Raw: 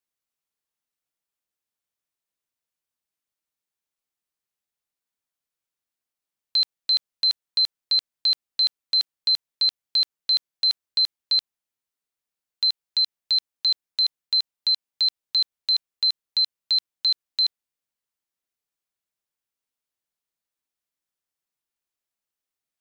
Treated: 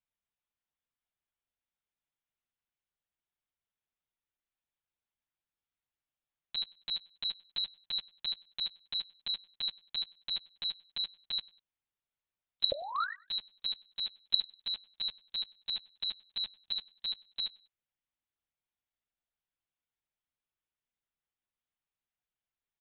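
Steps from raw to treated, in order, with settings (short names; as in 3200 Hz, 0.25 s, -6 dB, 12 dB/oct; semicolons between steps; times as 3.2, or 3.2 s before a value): painted sound rise, 12.73–13.15, 540–2000 Hz -37 dBFS; LPC vocoder at 8 kHz pitch kept; on a send: feedback echo 98 ms, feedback 36%, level -24 dB; on the sum: gain -3.5 dB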